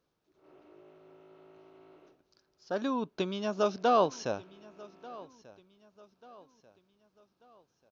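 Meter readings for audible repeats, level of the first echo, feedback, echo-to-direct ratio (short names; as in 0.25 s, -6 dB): 2, -21.0 dB, 41%, -20.0 dB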